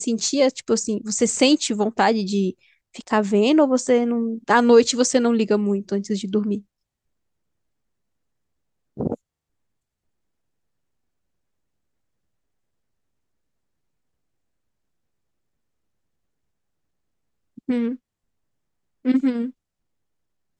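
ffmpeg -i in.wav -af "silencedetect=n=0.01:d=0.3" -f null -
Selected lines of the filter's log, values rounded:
silence_start: 2.52
silence_end: 2.95 | silence_duration: 0.43
silence_start: 6.61
silence_end: 8.97 | silence_duration: 2.37
silence_start: 9.15
silence_end: 17.58 | silence_duration: 8.43
silence_start: 17.96
silence_end: 19.05 | silence_duration: 1.09
silence_start: 19.51
silence_end: 20.59 | silence_duration: 1.08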